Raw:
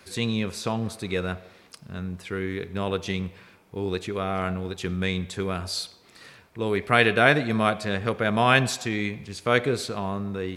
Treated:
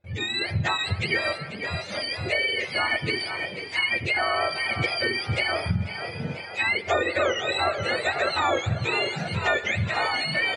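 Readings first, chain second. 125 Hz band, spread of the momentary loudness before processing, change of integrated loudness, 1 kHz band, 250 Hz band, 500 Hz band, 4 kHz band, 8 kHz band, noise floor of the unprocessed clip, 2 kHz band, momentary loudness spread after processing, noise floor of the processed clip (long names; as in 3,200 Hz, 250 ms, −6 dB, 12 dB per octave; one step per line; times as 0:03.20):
−0.5 dB, 14 LU, +0.5 dB, 0.0 dB, −7.5 dB, −1.5 dB, +5.0 dB, −4.0 dB, −55 dBFS, +3.0 dB, 6 LU, −37 dBFS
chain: frequency axis turned over on the octave scale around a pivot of 930 Hz
parametric band 230 Hz −11 dB 1 octave
echo with shifted repeats 490 ms, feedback 57%, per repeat +51 Hz, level −14 dB
noise gate with hold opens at −46 dBFS
automatic gain control gain up to 11 dB
graphic EQ with 15 bands 250 Hz −5 dB, 630 Hz +4 dB, 2,500 Hz +7 dB
downward compressor 6 to 1, threshold −21 dBFS, peak gain reduction 13.5 dB
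low-pass filter 3,900 Hz 12 dB per octave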